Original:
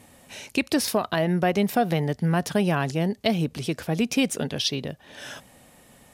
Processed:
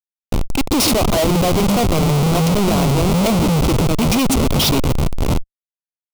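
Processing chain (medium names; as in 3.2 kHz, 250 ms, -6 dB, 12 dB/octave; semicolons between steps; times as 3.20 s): jump at every zero crossing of -33.5 dBFS; bands offset in time highs, lows 130 ms, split 190 Hz; Schmitt trigger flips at -27.5 dBFS; waveshaping leveller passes 5; peaking EQ 1.7 kHz -13 dB 0.41 oct; trim +6.5 dB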